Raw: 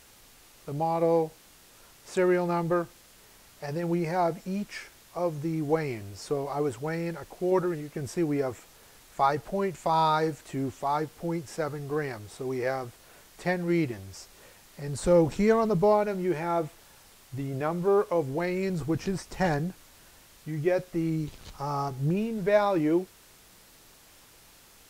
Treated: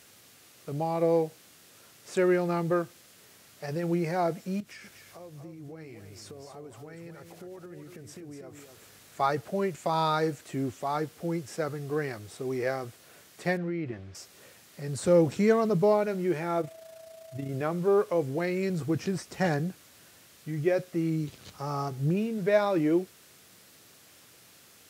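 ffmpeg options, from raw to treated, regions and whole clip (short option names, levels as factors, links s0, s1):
-filter_complex "[0:a]asettb=1/sr,asplit=3[s0][s1][s2];[s0]atrim=end=4.604[s3];[s1]atrim=start=4.6:end=9.2,asetpts=PTS-STARTPTS,afade=t=in:d=0.004:c=qsin,afade=t=out:st=4.596:d=0.004:c=qsin,acompressor=threshold=0.00708:ratio=6:attack=3.2:release=140:knee=1:detection=peak,aeval=exprs='val(0)+0.000891*(sin(2*PI*50*n/s)+sin(2*PI*2*50*n/s)/2+sin(2*PI*3*50*n/s)/3+sin(2*PI*4*50*n/s)/4+sin(2*PI*5*50*n/s)/5)':c=same,aecho=1:1:242:0.422,atrim=end_sample=202860[s4];[s2]atrim=start=9.196[s5];[s3][s4]acrossfade=d=0.004:c1=hsin:c2=qsin[s6];[s6][s5]acrossfade=d=0.004:c1=qsin:c2=hsin,asettb=1/sr,asplit=3[s7][s8][s9];[s7]atrim=end=13.574[s10];[s8]atrim=start=13.57:end=14.15,asetpts=PTS-STARTPTS,afade=t=in:d=0.004:c=qsin,afade=t=out:st=0.576:d=0.004:c=qsin,lowpass=2600,acompressor=threshold=0.0355:ratio=5:attack=3.2:release=140:knee=1:detection=peak[s11];[s9]atrim=start=14.146[s12];[s10][s11]acrossfade=d=0.004:c1=hsin:c2=qsin[s13];[s13][s12]acrossfade=d=0.004:c1=qsin:c2=hsin,asettb=1/sr,asplit=3[s14][s15][s16];[s14]atrim=end=16.614[s17];[s15]atrim=start=16.61:end=17.49,asetpts=PTS-STARTPTS,afade=t=in:d=0.004:c=qsin,afade=t=out:st=0.876:d=0.004:c=qsin,aeval=exprs='val(0)+0.00794*sin(2*PI*650*n/s)':c=same,tremolo=f=28:d=0.571[s18];[s16]atrim=start=17.486[s19];[s17][s18]acrossfade=d=0.004:c1=hsin:c2=qsin[s20];[s20][s19]acrossfade=d=0.004:c1=qsin:c2=hsin,highpass=f=89:w=0.5412,highpass=f=89:w=1.3066,equalizer=f=910:t=o:w=0.45:g=-6"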